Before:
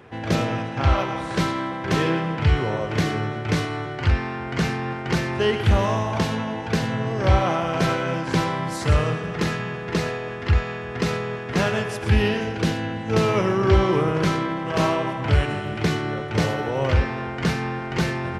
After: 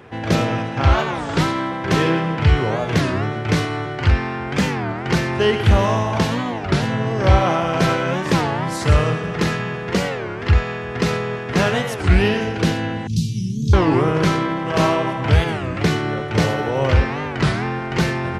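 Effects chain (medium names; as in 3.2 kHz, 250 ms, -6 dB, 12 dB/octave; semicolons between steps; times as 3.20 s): 13.07–13.76 s: inverse Chebyshev band-stop 650–1300 Hz, stop band 80 dB; warped record 33 1/3 rpm, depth 250 cents; trim +4 dB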